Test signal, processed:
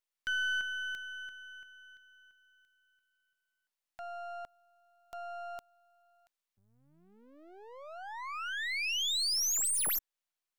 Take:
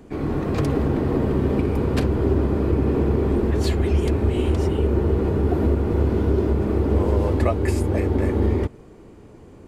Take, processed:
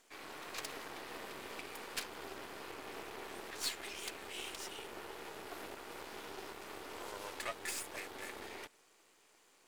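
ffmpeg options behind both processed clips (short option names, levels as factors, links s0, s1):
-filter_complex "[0:a]aderivative,aeval=exprs='max(val(0),0)':c=same,asplit=2[s0][s1];[s1]highpass=f=720:p=1,volume=4.47,asoftclip=type=tanh:threshold=0.112[s2];[s0][s2]amix=inputs=2:normalize=0,lowpass=f=4700:p=1,volume=0.501"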